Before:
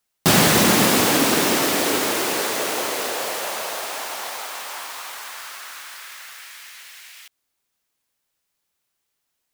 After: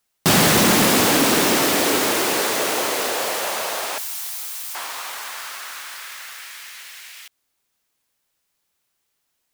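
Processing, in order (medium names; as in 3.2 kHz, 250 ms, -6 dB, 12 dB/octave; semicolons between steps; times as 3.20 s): 3.98–4.75 s: differentiator; saturation -12.5 dBFS, distortion -15 dB; trim +3 dB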